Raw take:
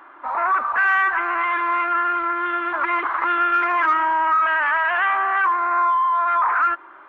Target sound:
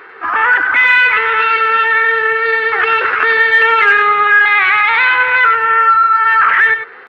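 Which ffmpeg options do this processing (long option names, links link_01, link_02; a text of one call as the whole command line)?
ffmpeg -i in.wav -af "equalizer=frequency=160:width=0.66:gain=13,asetrate=57191,aresample=44100,atempo=0.771105,aecho=1:1:97:0.355,volume=7.5dB" out.wav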